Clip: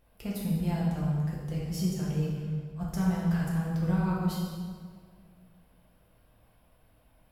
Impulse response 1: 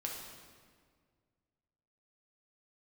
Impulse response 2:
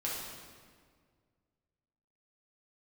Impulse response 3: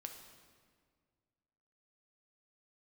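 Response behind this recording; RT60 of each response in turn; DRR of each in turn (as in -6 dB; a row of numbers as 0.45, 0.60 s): 2; 1.8, 1.8, 1.8 s; -1.5, -6.0, 4.0 dB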